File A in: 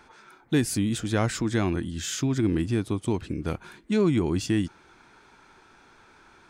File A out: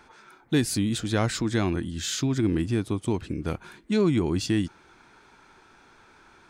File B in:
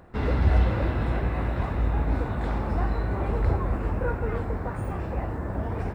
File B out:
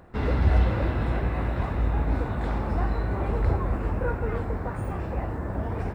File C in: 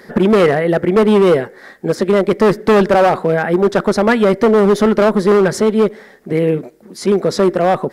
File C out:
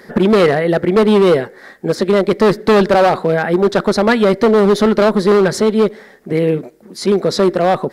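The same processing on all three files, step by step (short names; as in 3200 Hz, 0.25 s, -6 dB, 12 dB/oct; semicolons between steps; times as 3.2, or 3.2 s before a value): dynamic EQ 4100 Hz, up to +7 dB, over -46 dBFS, Q 2.9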